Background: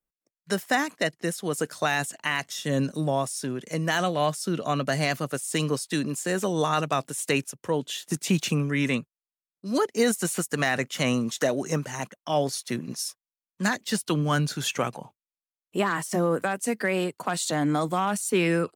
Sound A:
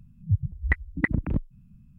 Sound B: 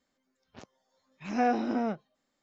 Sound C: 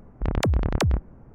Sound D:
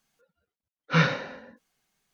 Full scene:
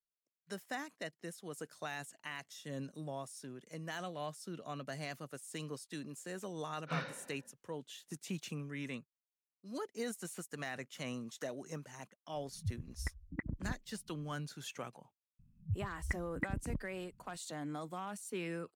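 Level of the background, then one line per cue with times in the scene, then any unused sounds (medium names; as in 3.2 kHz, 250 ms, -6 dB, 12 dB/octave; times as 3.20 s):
background -17.5 dB
5.97 s: add D -17.5 dB
12.35 s: add A -15 dB + treble shelf 2.6 kHz -11.5 dB
15.39 s: add A -13.5 dB
not used: B, C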